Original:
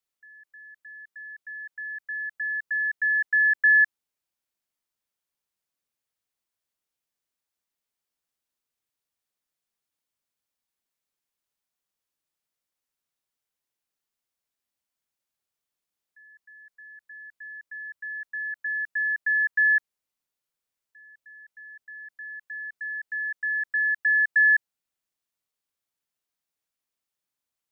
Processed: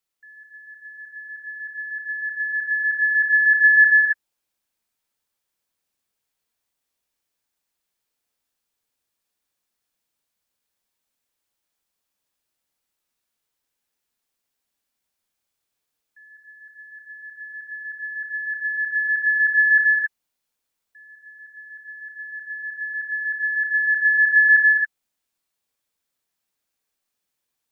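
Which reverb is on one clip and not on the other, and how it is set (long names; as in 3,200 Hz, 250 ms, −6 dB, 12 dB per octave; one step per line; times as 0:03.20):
reverb whose tail is shaped and stops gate 300 ms rising, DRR −1 dB
level +3 dB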